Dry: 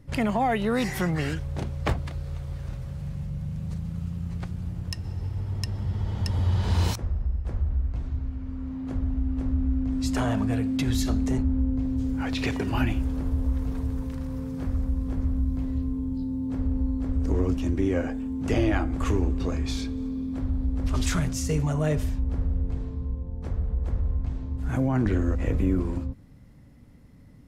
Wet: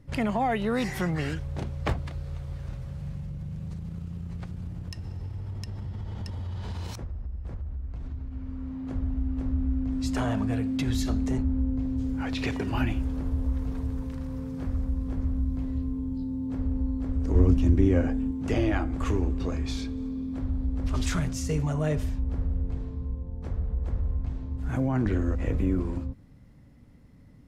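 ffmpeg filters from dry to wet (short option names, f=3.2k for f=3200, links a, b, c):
-filter_complex "[0:a]asettb=1/sr,asplit=3[a][b][c];[a]atrim=end=3.174[d];[b]atrim=start=3.17:end=8.32,asetpts=PTS-STARTPTS,afade=t=in:d=0.004:c=qsin,afade=t=out:st=5.146:d=0.004:c=qsin,acompressor=threshold=-29dB:ratio=6:attack=3.2:release=140:knee=1:detection=peak[e];[c]atrim=start=8.316[f];[d][e]acrossfade=d=0.004:c1=hsin:c2=qsin[g];[g][f]acrossfade=d=0.004:c1=qsin:c2=hsin,asettb=1/sr,asplit=3[h][i][j];[h]atrim=end=17.354[k];[i]atrim=start=17.35:end=18.31,asetpts=PTS-STARTPTS,afade=t=in:d=0.004:c=qsin,afade=t=out:st=0.956:d=0.004:c=qsin,lowshelf=f=260:g=9.5[l];[j]atrim=start=18.306[m];[k][l]acrossfade=d=0.004:c1=hsin:c2=qsin[n];[n][m]acrossfade=d=0.004:c1=qsin:c2=hsin,highshelf=f=8.8k:g=-5.5,volume=-2dB"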